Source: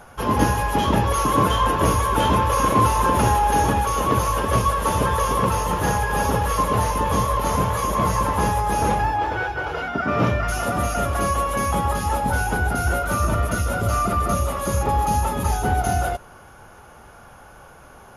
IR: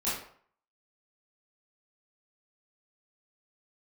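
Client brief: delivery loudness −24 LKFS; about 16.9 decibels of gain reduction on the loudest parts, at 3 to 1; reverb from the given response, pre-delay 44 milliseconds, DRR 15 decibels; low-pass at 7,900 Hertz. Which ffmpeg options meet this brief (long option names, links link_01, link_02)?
-filter_complex "[0:a]lowpass=7900,acompressor=threshold=-37dB:ratio=3,asplit=2[link_01][link_02];[1:a]atrim=start_sample=2205,adelay=44[link_03];[link_02][link_03]afir=irnorm=-1:irlink=0,volume=-22.5dB[link_04];[link_01][link_04]amix=inputs=2:normalize=0,volume=11dB"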